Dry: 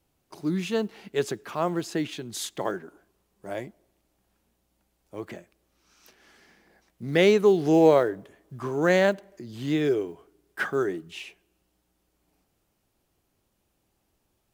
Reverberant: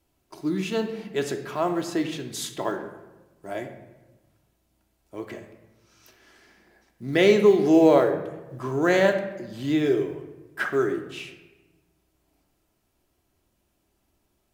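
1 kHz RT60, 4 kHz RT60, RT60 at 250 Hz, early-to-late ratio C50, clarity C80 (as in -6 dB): 1.1 s, 0.70 s, 1.5 s, 9.0 dB, 11.0 dB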